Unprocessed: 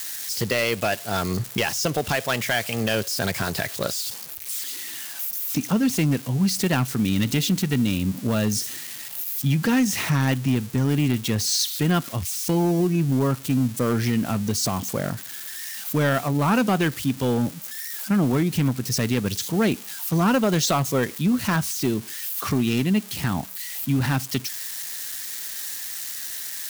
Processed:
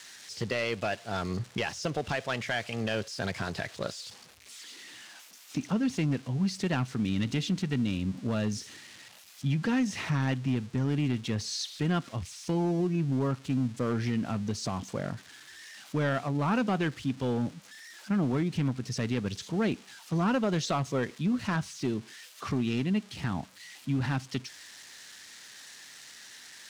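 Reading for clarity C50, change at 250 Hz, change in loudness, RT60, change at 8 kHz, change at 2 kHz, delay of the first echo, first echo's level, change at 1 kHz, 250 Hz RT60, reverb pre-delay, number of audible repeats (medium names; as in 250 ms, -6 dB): no reverb, -7.0 dB, -7.5 dB, no reverb, -15.0 dB, -8.0 dB, no echo, no echo, -7.5 dB, no reverb, no reverb, no echo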